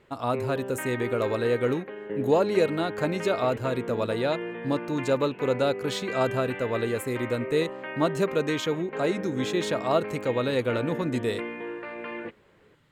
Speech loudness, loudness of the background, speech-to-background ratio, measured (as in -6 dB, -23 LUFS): -27.5 LUFS, -35.0 LUFS, 7.5 dB